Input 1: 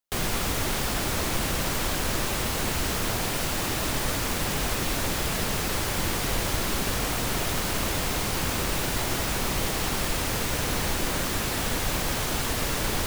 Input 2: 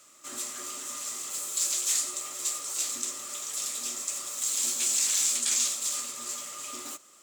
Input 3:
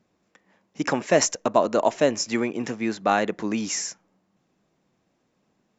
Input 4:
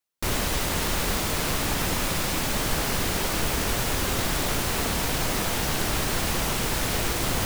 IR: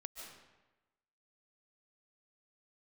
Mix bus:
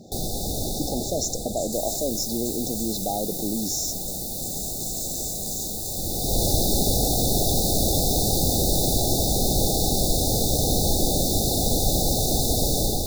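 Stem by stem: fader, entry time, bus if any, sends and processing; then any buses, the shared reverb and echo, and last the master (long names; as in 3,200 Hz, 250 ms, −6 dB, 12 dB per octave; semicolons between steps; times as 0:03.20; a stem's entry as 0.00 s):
+1.5 dB, 0.00 s, no send, automatic ducking −14 dB, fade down 1.60 s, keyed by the third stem
−13.0 dB, 0.00 s, no send, no processing
−14.5 dB, 0.00 s, no send, envelope flattener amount 70%
−9.0 dB, 1.50 s, no send, first difference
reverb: not used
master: automatic gain control gain up to 5 dB; linear-phase brick-wall band-stop 840–3,500 Hz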